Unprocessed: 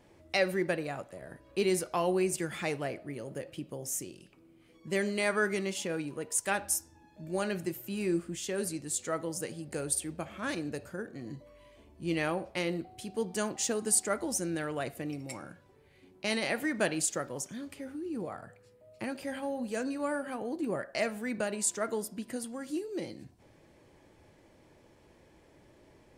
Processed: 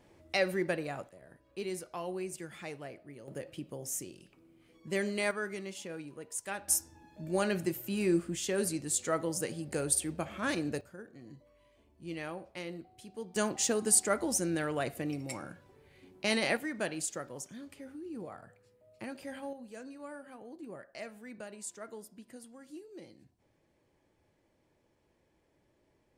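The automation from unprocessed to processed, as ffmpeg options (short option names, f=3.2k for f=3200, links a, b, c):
-af "asetnsamples=n=441:p=0,asendcmd='1.09 volume volume -9.5dB;3.28 volume volume -2dB;5.31 volume volume -8dB;6.68 volume volume 2dB;10.81 volume volume -9dB;13.36 volume volume 1.5dB;16.57 volume volume -5.5dB;19.53 volume volume -12.5dB',volume=-1.5dB"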